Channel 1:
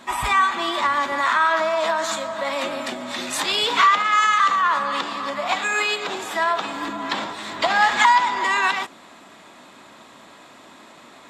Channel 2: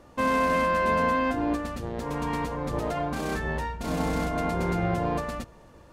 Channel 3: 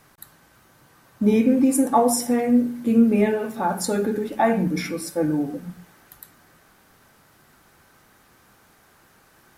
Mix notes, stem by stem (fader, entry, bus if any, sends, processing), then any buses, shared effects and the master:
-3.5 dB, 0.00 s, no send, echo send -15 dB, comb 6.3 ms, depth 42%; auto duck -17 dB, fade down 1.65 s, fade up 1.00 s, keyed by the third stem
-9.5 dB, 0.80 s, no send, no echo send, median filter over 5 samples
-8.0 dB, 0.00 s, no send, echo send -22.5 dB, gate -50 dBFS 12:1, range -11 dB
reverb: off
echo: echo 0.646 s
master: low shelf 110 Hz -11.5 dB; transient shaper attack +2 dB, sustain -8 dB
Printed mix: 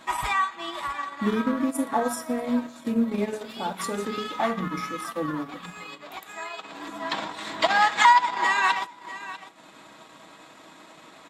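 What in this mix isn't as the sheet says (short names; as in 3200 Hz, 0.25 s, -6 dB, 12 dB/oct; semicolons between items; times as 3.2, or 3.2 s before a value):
stem 2: muted; master: missing low shelf 110 Hz -11.5 dB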